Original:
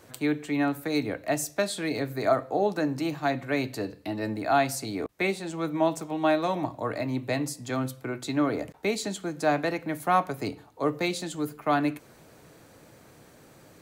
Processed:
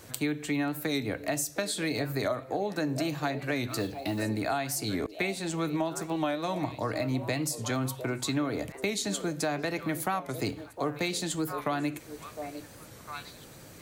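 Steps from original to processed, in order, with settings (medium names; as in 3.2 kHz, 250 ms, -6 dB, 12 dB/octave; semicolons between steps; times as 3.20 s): 10.48–10.95 s: median filter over 5 samples; treble shelf 2.2 kHz +8 dB; repeats whose band climbs or falls 705 ms, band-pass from 480 Hz, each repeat 1.4 oct, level -11 dB; compression 6:1, threshold -28 dBFS, peak gain reduction 12 dB; bass shelf 160 Hz +8.5 dB; 3.68–4.23 s: modulation noise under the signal 25 dB; warped record 45 rpm, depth 100 cents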